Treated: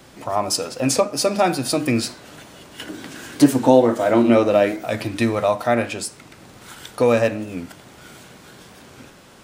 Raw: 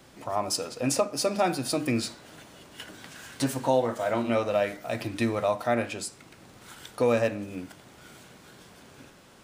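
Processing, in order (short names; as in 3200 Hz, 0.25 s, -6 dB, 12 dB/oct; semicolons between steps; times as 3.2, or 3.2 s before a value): 2.81–4.85 bell 310 Hz +10.5 dB 0.96 oct; record warp 45 rpm, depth 100 cents; gain +7 dB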